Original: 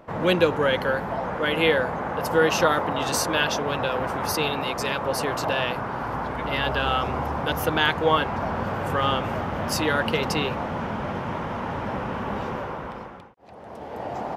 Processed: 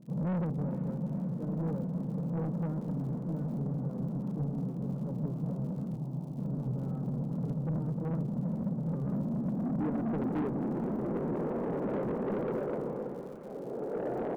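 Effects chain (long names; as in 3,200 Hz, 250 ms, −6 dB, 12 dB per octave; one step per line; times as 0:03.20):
brick-wall band-pass 120–1,500 Hz
low-pass filter sweep 180 Hz → 430 Hz, 0:08.97–0:11.48
surface crackle 140 per second −49 dBFS
soft clipping −29 dBFS, distortion −9 dB
0:05.96–0:06.38: phaser with its sweep stopped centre 320 Hz, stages 8
on a send: feedback delay with all-pass diffusion 457 ms, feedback 71%, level −13 dB
on the sum: wow of a warped record 78 rpm, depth 100 cents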